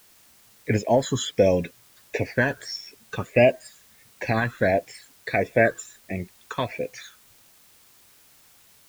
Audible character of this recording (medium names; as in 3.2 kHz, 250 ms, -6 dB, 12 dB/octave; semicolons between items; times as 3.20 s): phasing stages 8, 1.5 Hz, lowest notch 640–1300 Hz; a quantiser's noise floor 10-bit, dither triangular